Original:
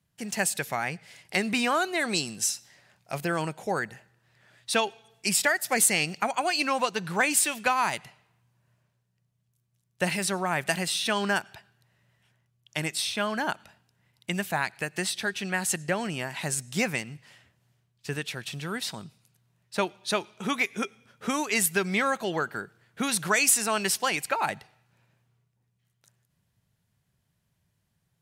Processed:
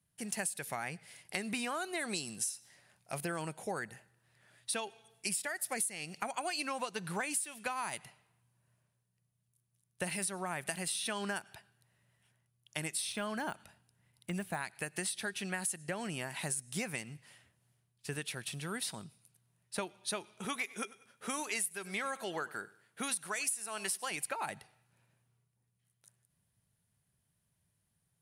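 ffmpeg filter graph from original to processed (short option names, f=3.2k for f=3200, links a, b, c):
-filter_complex "[0:a]asettb=1/sr,asplit=3[a][b][c];[a]atrim=end=13.124[d];[b]atrim=start=13.12:end=14.55,asetpts=PTS-STARTPTS,afade=t=in:d=0.004:c=qsin,afade=t=out:st=1.426:d=0.004:c=qsin,deesser=1,lowshelf=f=150:g=5[e];[c]atrim=start=14.546[f];[d][e]acrossfade=d=0.004:c1=hsin:c2=qsin[g];[g][f]acrossfade=d=0.004:c1=qsin:c2=hsin,asettb=1/sr,asplit=3[h][i][j];[h]atrim=end=20.454[k];[i]atrim=start=20.45:end=24.11,asetpts=PTS-STARTPTS,afade=t=in:d=0.004:c=qsin,afade=t=out:st=3.656:d=0.004:c=qsin,lowshelf=f=260:g=-10,aecho=1:1:96|192|288:0.0944|0.0349|0.0129,atrim=end_sample=161406[l];[j]atrim=start=24.106[m];[k][l]acrossfade=d=0.004:c1=hsin:c2=qsin[n];[n][m]acrossfade=d=0.004:c1=qsin:c2=hsin,equalizer=f=9.8k:w=3.1:g=14,acompressor=threshold=-27dB:ratio=8,volume=-6dB"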